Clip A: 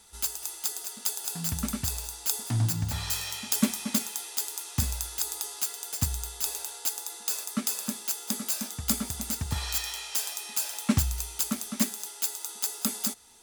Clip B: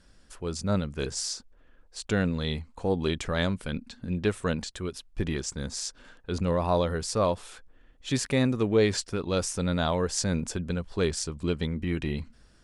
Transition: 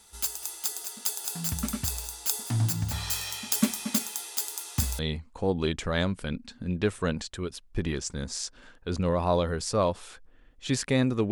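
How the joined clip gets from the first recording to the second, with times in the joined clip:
clip A
4.99 switch to clip B from 2.41 s

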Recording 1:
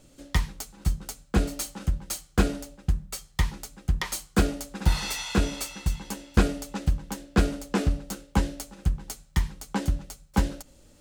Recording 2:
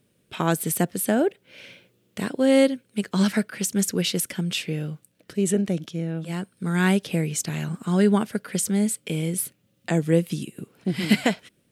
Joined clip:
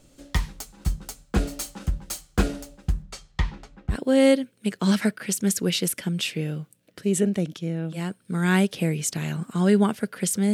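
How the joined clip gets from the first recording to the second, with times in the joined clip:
recording 1
3.02–3.97 LPF 7000 Hz -> 1800 Hz
3.93 switch to recording 2 from 2.25 s, crossfade 0.08 s

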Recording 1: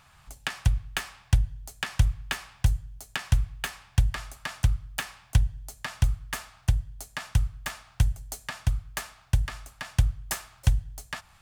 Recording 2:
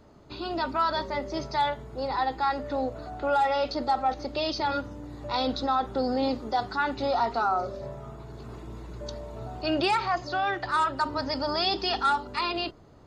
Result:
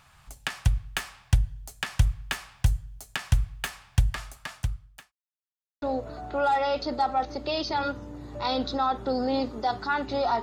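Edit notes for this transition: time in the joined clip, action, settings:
recording 1
4.19–5.12 fade out linear
5.12–5.82 mute
5.82 switch to recording 2 from 2.71 s

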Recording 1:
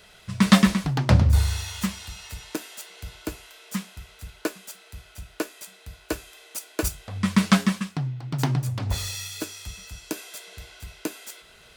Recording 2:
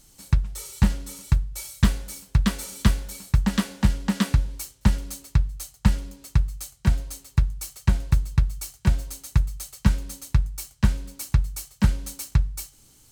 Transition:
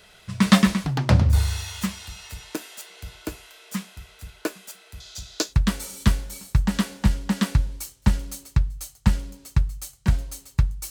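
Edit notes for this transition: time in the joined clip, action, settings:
recording 1
5–5.55 band shelf 5000 Hz +15 dB 1.3 oct
5.48 switch to recording 2 from 2.27 s, crossfade 0.14 s

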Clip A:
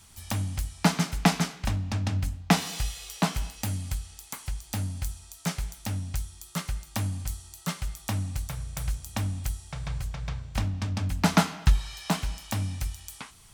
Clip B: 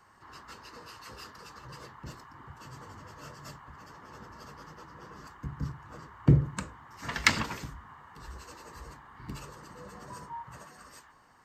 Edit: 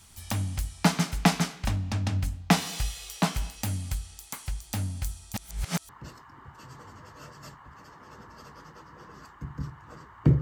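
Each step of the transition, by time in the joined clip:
clip A
5.34–5.89 reverse
5.89 switch to clip B from 1.91 s

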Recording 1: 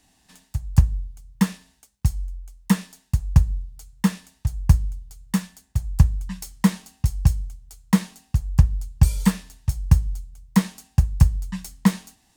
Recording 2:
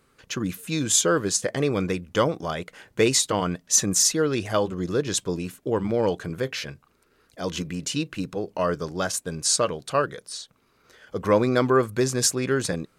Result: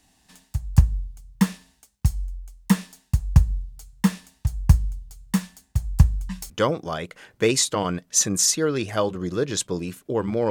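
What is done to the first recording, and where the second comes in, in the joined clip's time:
recording 1
6.5 switch to recording 2 from 2.07 s

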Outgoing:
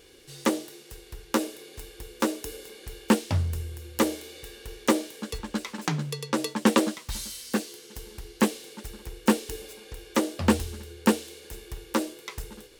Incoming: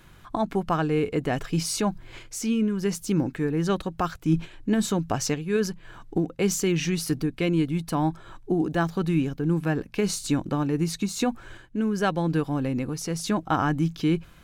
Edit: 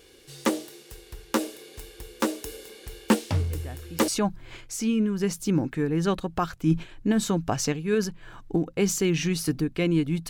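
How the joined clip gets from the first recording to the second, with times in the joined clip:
outgoing
3.33 add incoming from 0.95 s 0.75 s -16 dB
4.08 switch to incoming from 1.7 s

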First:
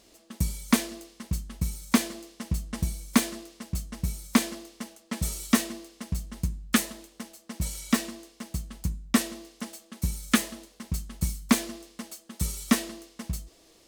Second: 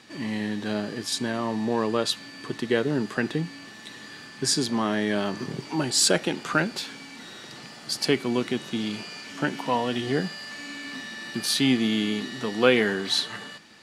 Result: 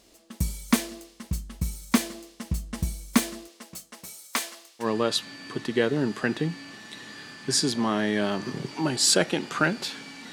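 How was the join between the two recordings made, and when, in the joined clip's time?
first
3.47–4.87 HPF 280 Hz -> 1100 Hz
4.83 switch to second from 1.77 s, crossfade 0.08 s

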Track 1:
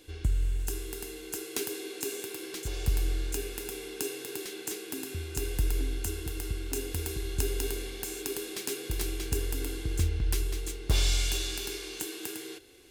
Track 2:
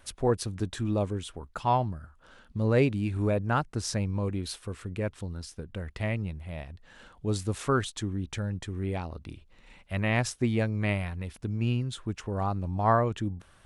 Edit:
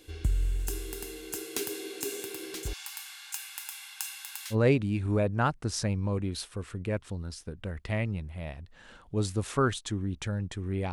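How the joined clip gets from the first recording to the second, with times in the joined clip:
track 1
2.73–4.56 brick-wall FIR high-pass 770 Hz
4.53 switch to track 2 from 2.64 s, crossfade 0.06 s

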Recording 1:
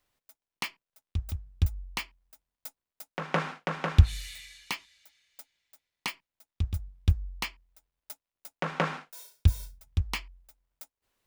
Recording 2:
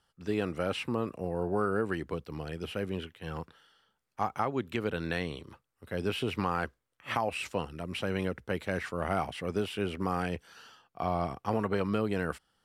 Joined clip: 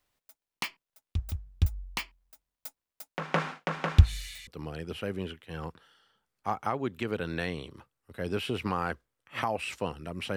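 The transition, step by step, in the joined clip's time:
recording 1
4.47 switch to recording 2 from 2.2 s

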